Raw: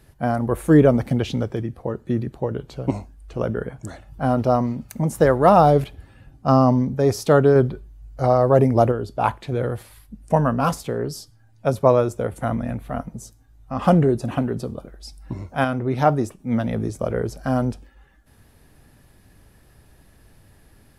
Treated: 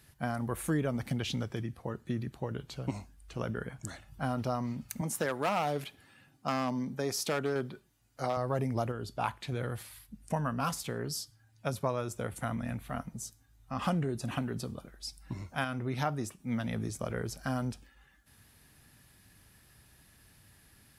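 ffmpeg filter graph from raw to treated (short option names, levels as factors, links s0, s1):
-filter_complex "[0:a]asettb=1/sr,asplit=3[s0][s1][s2];[s0]atrim=end=5.014[s3];[s1]atrim=start=5.01:end=8.37,asetpts=PTS-STARTPTS,afade=t=in:d=0.004:c=qsin,afade=t=out:st=3.356:d=0.004:c=qsin,highpass=200,asoftclip=type=hard:threshold=0.355[s4];[s2]atrim=start=8.366[s5];[s3][s4]acrossfade=d=0.004:c1=hsin:c2=qsin[s6];[s6][s5]acrossfade=d=0.004:c1=qsin:c2=hsin,highpass=f=190:p=1,equalizer=f=490:t=o:w=2.4:g=-12,acompressor=threshold=0.0316:ratio=2.5"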